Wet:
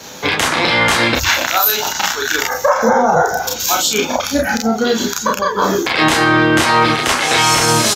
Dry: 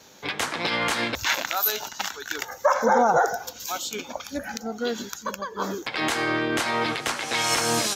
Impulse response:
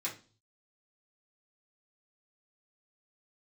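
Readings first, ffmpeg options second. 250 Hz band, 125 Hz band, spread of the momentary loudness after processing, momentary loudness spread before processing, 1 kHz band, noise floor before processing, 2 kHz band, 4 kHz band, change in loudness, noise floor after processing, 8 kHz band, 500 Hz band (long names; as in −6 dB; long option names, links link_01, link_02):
+13.0 dB, +15.5 dB, 6 LU, 12 LU, +10.5 dB, −44 dBFS, +12.0 dB, +12.0 dB, +11.5 dB, −25 dBFS, +12.0 dB, +10.0 dB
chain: -filter_complex "[0:a]acrossover=split=140[link_01][link_02];[link_02]acompressor=threshold=-28dB:ratio=6[link_03];[link_01][link_03]amix=inputs=2:normalize=0,asplit=2[link_04][link_05];[link_05]aecho=0:1:32|44:0.708|0.501[link_06];[link_04][link_06]amix=inputs=2:normalize=0,alimiter=level_in=16.5dB:limit=-1dB:release=50:level=0:latency=1,volume=-1dB"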